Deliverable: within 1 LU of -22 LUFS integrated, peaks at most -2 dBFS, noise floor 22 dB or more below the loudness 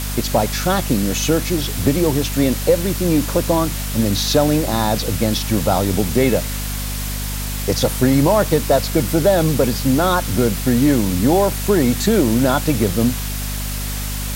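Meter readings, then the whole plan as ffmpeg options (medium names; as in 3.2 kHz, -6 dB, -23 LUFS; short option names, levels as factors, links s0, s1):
hum 50 Hz; highest harmonic 250 Hz; hum level -23 dBFS; noise floor -24 dBFS; noise floor target -40 dBFS; loudness -18.0 LUFS; peak level -2.5 dBFS; loudness target -22.0 LUFS
-> -af "bandreject=f=50:t=h:w=4,bandreject=f=100:t=h:w=4,bandreject=f=150:t=h:w=4,bandreject=f=200:t=h:w=4,bandreject=f=250:t=h:w=4"
-af "afftdn=nr=16:nf=-24"
-af "volume=0.631"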